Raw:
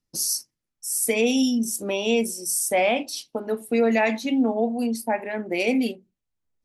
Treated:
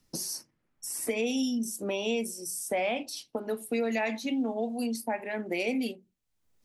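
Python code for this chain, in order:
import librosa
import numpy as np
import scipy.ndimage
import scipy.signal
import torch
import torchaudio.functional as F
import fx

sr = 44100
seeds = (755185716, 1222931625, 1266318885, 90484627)

y = fx.band_squash(x, sr, depth_pct=70)
y = F.gain(torch.from_numpy(y), -8.0).numpy()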